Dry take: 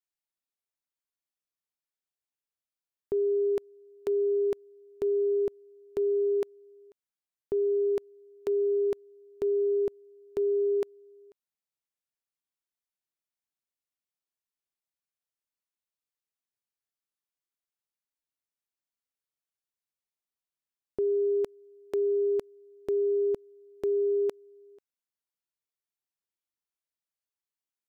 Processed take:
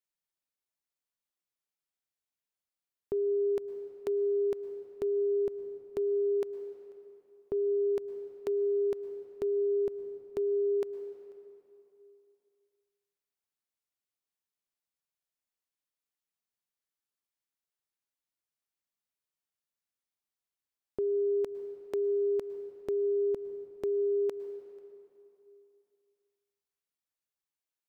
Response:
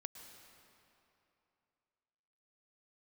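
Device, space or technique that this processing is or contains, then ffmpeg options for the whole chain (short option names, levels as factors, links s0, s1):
ducked reverb: -filter_complex "[0:a]asplit=3[s0][s1][s2];[1:a]atrim=start_sample=2205[s3];[s1][s3]afir=irnorm=-1:irlink=0[s4];[s2]apad=whole_len=1229944[s5];[s4][s5]sidechaincompress=threshold=0.0316:ratio=8:attack=7.7:release=110,volume=1.5[s6];[s0][s6]amix=inputs=2:normalize=0,volume=0.473"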